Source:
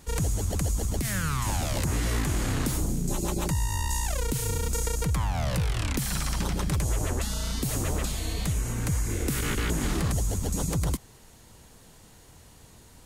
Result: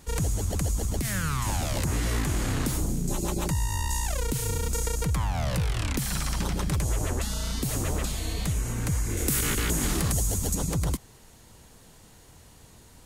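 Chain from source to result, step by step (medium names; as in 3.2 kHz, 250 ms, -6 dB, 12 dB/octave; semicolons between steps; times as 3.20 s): 9.17–10.55 s: treble shelf 5.5 kHz +9.5 dB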